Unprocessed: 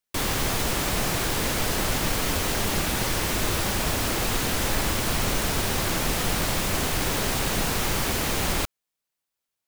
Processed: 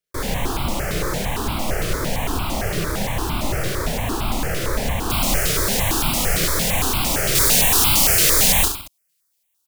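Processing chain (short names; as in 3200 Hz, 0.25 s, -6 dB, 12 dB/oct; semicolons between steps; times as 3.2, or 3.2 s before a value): high shelf 2600 Hz -8.5 dB, from 5.1 s +2 dB, from 7.35 s +10 dB; reverse bouncing-ball echo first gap 30 ms, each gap 1.2×, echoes 5; step phaser 8.8 Hz 240–1800 Hz; gain +4.5 dB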